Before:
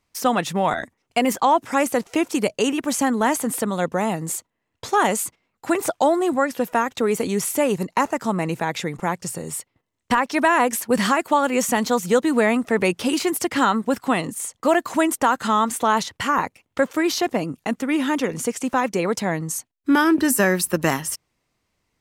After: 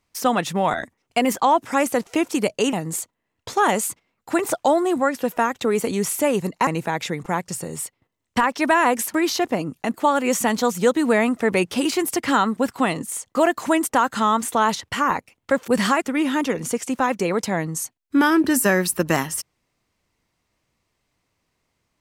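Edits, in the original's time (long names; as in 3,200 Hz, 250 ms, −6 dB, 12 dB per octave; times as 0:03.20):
0:02.73–0:04.09: remove
0:08.03–0:08.41: remove
0:10.88–0:11.22: swap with 0:16.96–0:17.76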